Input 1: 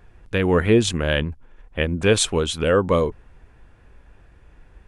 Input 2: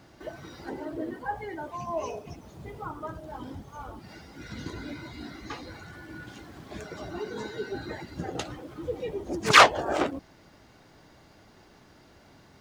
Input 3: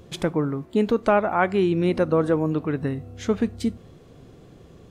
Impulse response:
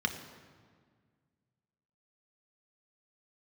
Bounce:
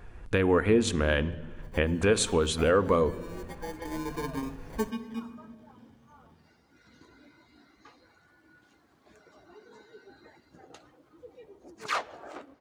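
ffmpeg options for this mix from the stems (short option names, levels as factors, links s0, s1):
-filter_complex "[0:a]volume=1.41,asplit=3[s0][s1][s2];[s1]volume=0.0708[s3];[1:a]lowshelf=f=250:g=-7.5,adelay=2350,volume=0.158,asplit=2[s4][s5];[s5]volume=0.119[s6];[2:a]bandreject=f=50:t=h:w=6,bandreject=f=100:t=h:w=6,bandreject=f=150:t=h:w=6,bandreject=f=200:t=h:w=6,bandreject=f=250:t=h:w=6,bandreject=f=300:t=h:w=6,bandreject=f=350:t=h:w=6,acrusher=samples=33:mix=1:aa=0.000001,asplit=2[s7][s8];[s8]adelay=8,afreqshift=1[s9];[s7][s9]amix=inputs=2:normalize=1,adelay=1500,volume=0.562,afade=t=in:st=3.66:d=0.55:silence=0.223872,asplit=2[s10][s11];[s11]volume=0.188[s12];[s2]apad=whole_len=282830[s13];[s10][s13]sidechaingate=range=0.0224:threshold=0.00501:ratio=16:detection=peak[s14];[s0][s14]amix=inputs=2:normalize=0,acompressor=threshold=0.0562:ratio=2.5,volume=1[s15];[3:a]atrim=start_sample=2205[s16];[s3][s6][s12]amix=inputs=3:normalize=0[s17];[s17][s16]afir=irnorm=-1:irlink=0[s18];[s4][s15][s18]amix=inputs=3:normalize=0"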